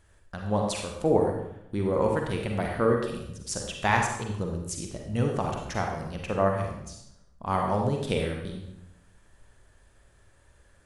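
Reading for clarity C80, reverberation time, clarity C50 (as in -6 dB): 5.5 dB, 0.80 s, 3.0 dB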